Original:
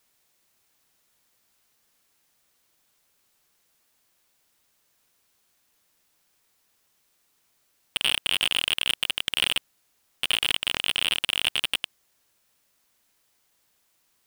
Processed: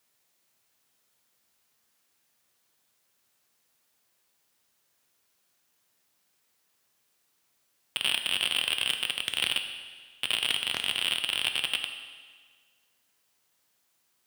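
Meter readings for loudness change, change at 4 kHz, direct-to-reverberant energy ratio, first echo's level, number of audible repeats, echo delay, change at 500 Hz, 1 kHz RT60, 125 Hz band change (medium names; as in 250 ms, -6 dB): -3.5 dB, -3.0 dB, 6.5 dB, no echo, no echo, no echo, -3.0 dB, 1.6 s, -4.5 dB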